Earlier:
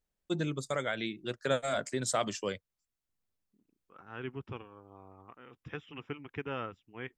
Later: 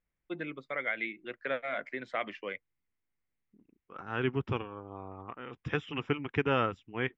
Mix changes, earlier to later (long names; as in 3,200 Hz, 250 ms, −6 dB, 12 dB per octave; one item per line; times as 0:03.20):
first voice: add loudspeaker in its box 340–2,600 Hz, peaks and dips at 410 Hz −5 dB, 610 Hz −4 dB, 900 Hz −6 dB, 1,300 Hz −3 dB, 2,100 Hz +10 dB
second voice +9.5 dB